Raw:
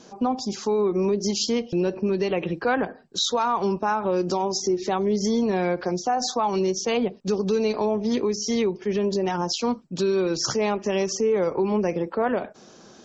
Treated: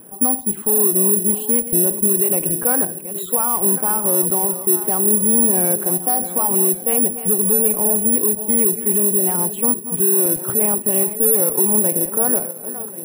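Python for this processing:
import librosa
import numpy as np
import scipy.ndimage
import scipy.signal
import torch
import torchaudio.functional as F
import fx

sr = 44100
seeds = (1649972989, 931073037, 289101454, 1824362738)

p1 = fx.reverse_delay_fb(x, sr, ms=544, feedback_pct=49, wet_db=-13.0)
p2 = scipy.signal.sosfilt(scipy.signal.butter(6, 3100.0, 'lowpass', fs=sr, output='sos'), p1)
p3 = fx.tilt_eq(p2, sr, slope=-2.0)
p4 = fx.clip_asym(p3, sr, top_db=-28.5, bottom_db=-18.0)
p5 = p3 + (p4 * 10.0 ** (-9.0 / 20.0))
p6 = (np.kron(p5[::4], np.eye(4)[0]) * 4)[:len(p5)]
y = p6 * 10.0 ** (-4.0 / 20.0)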